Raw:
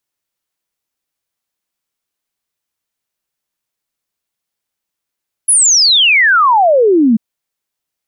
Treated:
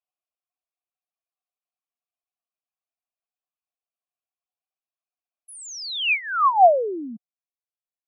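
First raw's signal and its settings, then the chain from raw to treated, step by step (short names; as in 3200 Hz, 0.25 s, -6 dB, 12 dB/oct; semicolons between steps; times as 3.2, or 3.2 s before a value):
log sweep 11000 Hz -> 210 Hz 1.69 s -6 dBFS
reverb removal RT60 1.6 s; vowel filter a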